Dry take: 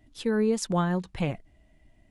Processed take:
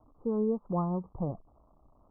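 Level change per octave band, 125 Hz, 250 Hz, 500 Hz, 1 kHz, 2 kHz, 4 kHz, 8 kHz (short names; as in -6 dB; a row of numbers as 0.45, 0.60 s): -4.5 dB, -4.5 dB, -4.5 dB, -5.0 dB, under -35 dB, under -40 dB, under -40 dB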